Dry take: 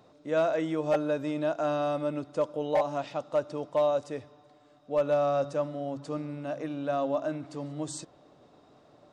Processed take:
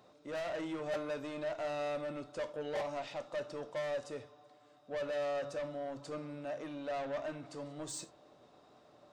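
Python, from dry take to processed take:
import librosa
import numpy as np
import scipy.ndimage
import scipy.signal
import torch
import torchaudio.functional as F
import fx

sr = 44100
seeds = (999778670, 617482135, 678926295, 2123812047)

y = fx.low_shelf(x, sr, hz=380.0, db=-6.5)
y = 10.0 ** (-33.5 / 20.0) * np.tanh(y / 10.0 ** (-33.5 / 20.0))
y = fx.rev_gated(y, sr, seeds[0], gate_ms=110, shape='falling', drr_db=9.0)
y = F.gain(torch.from_numpy(y), -2.0).numpy()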